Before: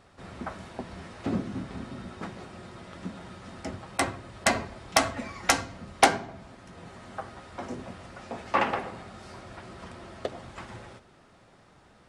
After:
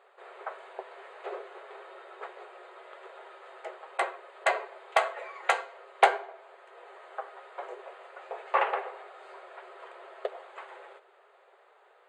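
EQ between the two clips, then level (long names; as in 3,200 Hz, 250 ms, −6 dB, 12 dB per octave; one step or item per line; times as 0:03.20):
moving average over 8 samples
linear-phase brick-wall high-pass 370 Hz
0.0 dB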